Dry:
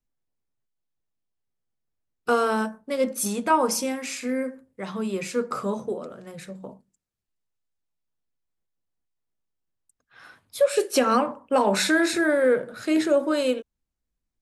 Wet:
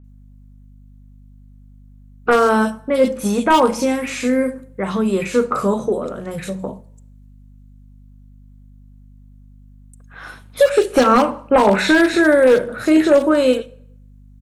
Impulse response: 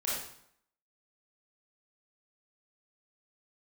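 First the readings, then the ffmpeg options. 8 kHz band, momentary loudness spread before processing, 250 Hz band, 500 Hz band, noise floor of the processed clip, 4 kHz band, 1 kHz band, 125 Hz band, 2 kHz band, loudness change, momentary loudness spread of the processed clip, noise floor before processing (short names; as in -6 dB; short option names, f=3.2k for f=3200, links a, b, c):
-0.5 dB, 14 LU, +9.0 dB, +8.5 dB, -44 dBFS, +4.5 dB, +7.5 dB, +10.5 dB, +7.5 dB, +7.5 dB, 14 LU, -83 dBFS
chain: -filter_complex "[0:a]acrossover=split=4300[a][b];[b]acompressor=threshold=-45dB:ratio=4:attack=1:release=60[c];[a][c]amix=inputs=2:normalize=0,equalizer=f=4.9k:t=o:w=0.28:g=-7,asplit=2[d][e];[e]acompressor=threshold=-35dB:ratio=12,volume=-1dB[f];[d][f]amix=inputs=2:normalize=0,aeval=exprs='val(0)+0.00282*(sin(2*PI*50*n/s)+sin(2*PI*2*50*n/s)/2+sin(2*PI*3*50*n/s)/3+sin(2*PI*4*50*n/s)/4+sin(2*PI*5*50*n/s)/5)':c=same,aeval=exprs='0.224*(abs(mod(val(0)/0.224+3,4)-2)-1)':c=same,acrossover=split=2600[g][h];[h]adelay=40[i];[g][i]amix=inputs=2:normalize=0,asplit=2[j][k];[1:a]atrim=start_sample=2205[l];[k][l]afir=irnorm=-1:irlink=0,volume=-24.5dB[m];[j][m]amix=inputs=2:normalize=0,volume=7.5dB"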